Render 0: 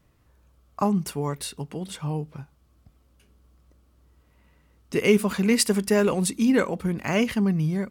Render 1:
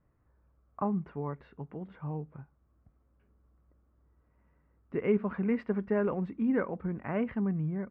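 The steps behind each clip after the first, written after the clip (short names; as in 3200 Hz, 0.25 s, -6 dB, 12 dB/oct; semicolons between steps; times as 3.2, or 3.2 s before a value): LPF 1800 Hz 24 dB/oct; gain -8 dB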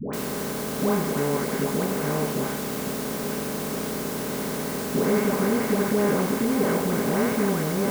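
per-bin compression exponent 0.2; requantised 6-bit, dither triangular; dispersion highs, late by 0.134 s, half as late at 790 Hz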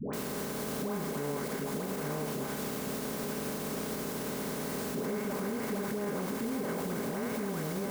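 limiter -20.5 dBFS, peak gain reduction 10 dB; gain -5.5 dB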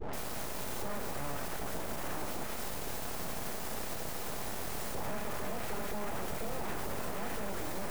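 full-wave rectifier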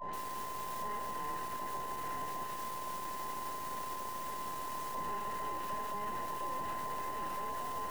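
band inversion scrambler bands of 1000 Hz; gain -6 dB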